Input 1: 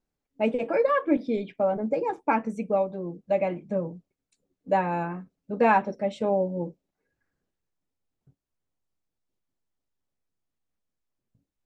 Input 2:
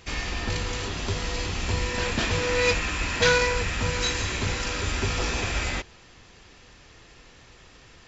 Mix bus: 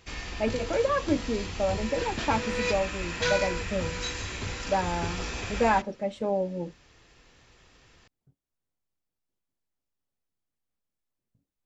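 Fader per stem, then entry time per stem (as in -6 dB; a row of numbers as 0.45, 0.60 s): -3.0, -7.0 dB; 0.00, 0.00 s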